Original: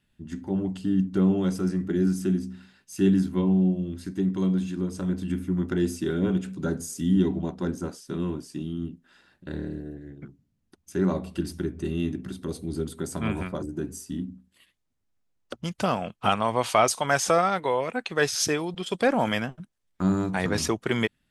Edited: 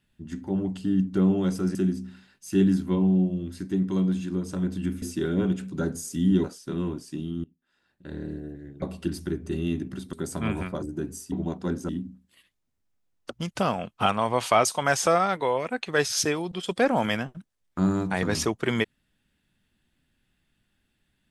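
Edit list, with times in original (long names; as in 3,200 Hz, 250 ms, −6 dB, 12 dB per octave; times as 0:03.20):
0:01.75–0:02.21: remove
0:05.48–0:05.87: remove
0:07.29–0:07.86: move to 0:14.12
0:08.86–0:09.74: fade in quadratic, from −21 dB
0:10.24–0:11.15: remove
0:12.46–0:12.93: remove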